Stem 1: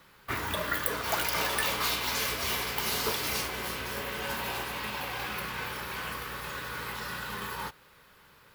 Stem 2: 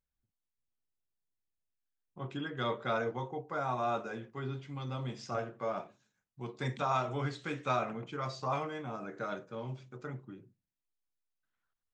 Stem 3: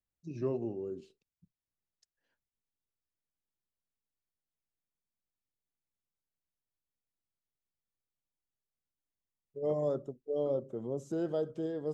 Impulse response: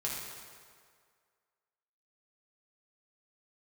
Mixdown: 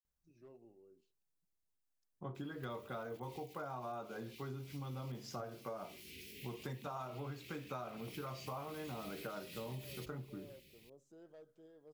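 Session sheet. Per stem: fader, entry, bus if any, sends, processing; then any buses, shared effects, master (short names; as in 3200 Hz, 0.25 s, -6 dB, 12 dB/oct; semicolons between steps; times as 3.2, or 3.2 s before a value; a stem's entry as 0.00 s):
-9.5 dB, 2.35 s, no send, elliptic band-stop 390–2300 Hz; notches 60/120 Hz; negative-ratio compressor -45 dBFS, ratio -1
+1.5 dB, 0.05 s, no send, bell 2600 Hz -8 dB 1.4 oct
-20.0 dB, 0.00 s, no send, low shelf 420 Hz -9 dB; overloaded stage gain 31.5 dB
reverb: off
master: compressor 10:1, threshold -41 dBFS, peak gain reduction 15 dB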